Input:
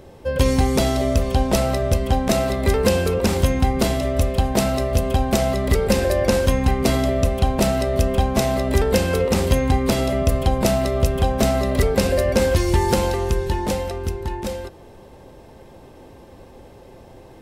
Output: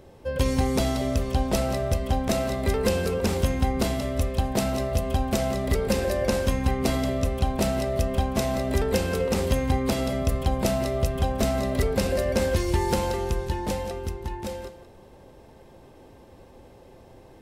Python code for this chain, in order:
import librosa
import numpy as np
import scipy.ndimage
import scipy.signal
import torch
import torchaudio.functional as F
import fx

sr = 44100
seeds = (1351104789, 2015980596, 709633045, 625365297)

y = x + 10.0 ** (-12.5 / 20.0) * np.pad(x, (int(176 * sr / 1000.0), 0))[:len(x)]
y = y * librosa.db_to_amplitude(-6.0)